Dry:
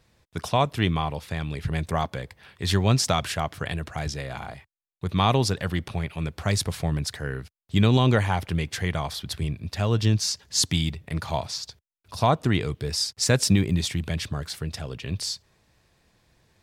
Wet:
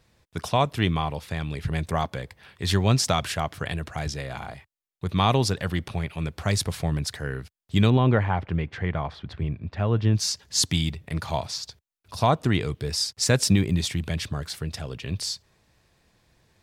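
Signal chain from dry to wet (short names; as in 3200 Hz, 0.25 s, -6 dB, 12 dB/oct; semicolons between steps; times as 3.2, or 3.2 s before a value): 7.9–10.15 LPF 2000 Hz 12 dB/oct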